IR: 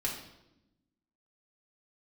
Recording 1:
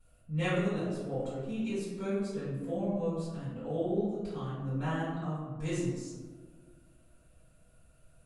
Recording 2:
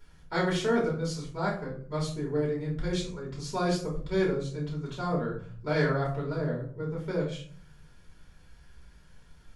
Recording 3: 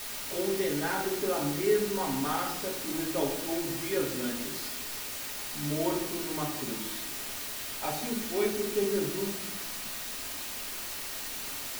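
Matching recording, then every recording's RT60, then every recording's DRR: 3; 1.6, 0.50, 0.90 s; -14.5, -5.5, -4.5 dB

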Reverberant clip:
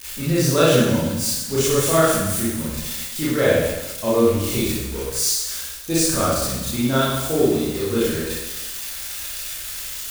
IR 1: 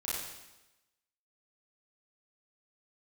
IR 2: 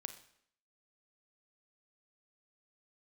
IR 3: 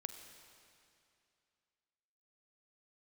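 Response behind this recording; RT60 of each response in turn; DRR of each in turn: 1; 1.0, 0.65, 2.5 s; -9.5, 8.5, 7.0 dB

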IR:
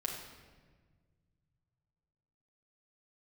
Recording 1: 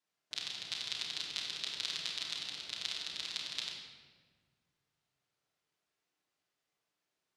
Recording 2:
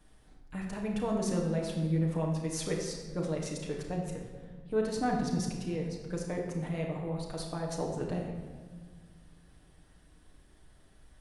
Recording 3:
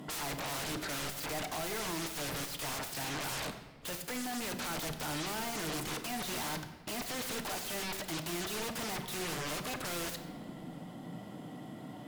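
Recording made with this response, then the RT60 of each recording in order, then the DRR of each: 2; 1.5 s, 1.5 s, not exponential; -5.0, -1.0, 6.0 dB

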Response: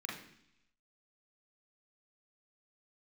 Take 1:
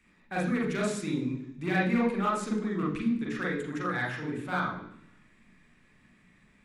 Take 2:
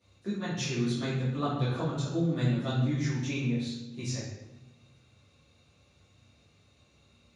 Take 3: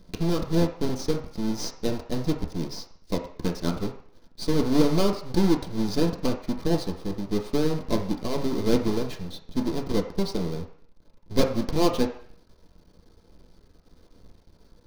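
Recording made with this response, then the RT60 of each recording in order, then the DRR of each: 1; 0.70, 1.1, 0.55 s; -3.0, -13.5, 0.5 dB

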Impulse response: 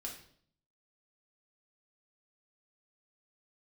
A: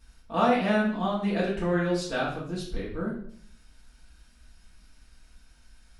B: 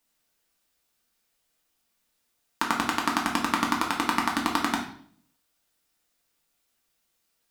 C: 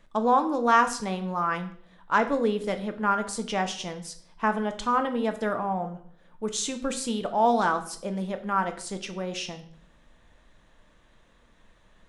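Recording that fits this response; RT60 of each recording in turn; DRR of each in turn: B; 0.60, 0.60, 0.60 s; -7.0, -1.5, 6.5 dB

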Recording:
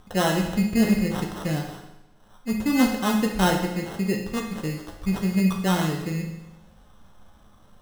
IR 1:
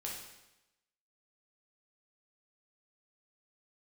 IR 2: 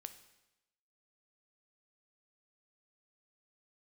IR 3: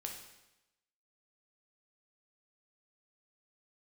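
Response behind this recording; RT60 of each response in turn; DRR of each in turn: 3; 0.95, 0.95, 0.95 s; -3.5, 9.5, 1.0 dB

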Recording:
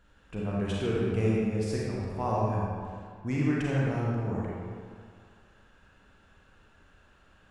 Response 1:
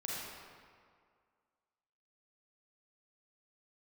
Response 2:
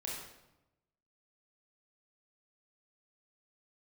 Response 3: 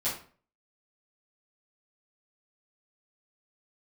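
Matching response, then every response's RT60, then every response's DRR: 1; 2.0, 0.95, 0.45 s; -5.5, -4.0, -10.5 dB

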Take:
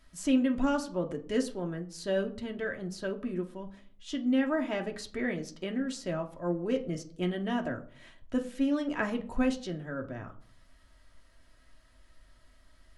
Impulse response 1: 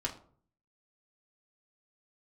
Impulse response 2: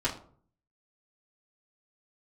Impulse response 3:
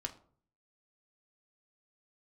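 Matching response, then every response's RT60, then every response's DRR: 3; 0.50, 0.50, 0.50 s; -2.5, -8.5, 2.5 dB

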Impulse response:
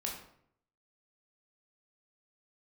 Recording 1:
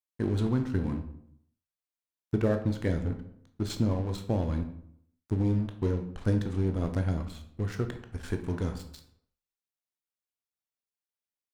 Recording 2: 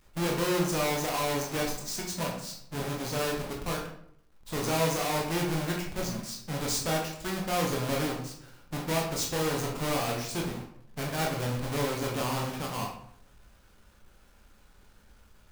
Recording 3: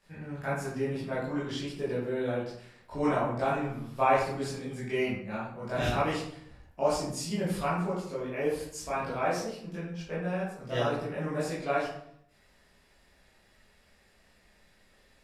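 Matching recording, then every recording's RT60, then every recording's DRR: 2; 0.65, 0.65, 0.65 s; 6.0, -1.5, -10.0 dB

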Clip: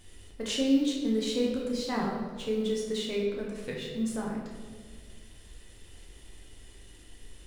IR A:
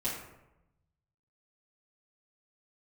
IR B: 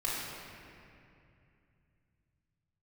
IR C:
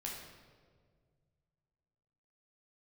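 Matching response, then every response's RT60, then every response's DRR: C; 0.90, 2.6, 1.8 s; -10.5, -6.5, -3.0 dB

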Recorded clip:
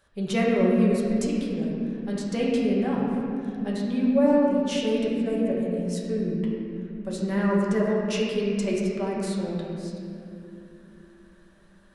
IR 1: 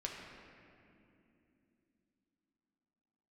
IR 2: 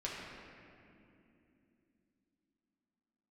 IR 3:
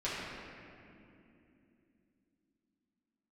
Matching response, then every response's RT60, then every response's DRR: 2; 2.8, 2.8, 2.8 s; -2.0, -6.0, -10.5 dB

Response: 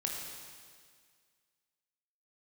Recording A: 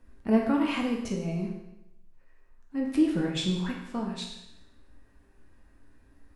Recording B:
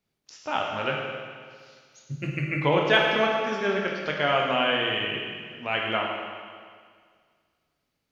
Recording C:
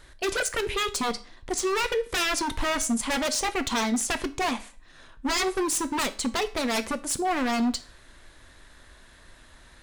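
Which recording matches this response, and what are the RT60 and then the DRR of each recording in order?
B; 0.90, 1.9, 0.40 s; -1.0, -1.0, 10.5 dB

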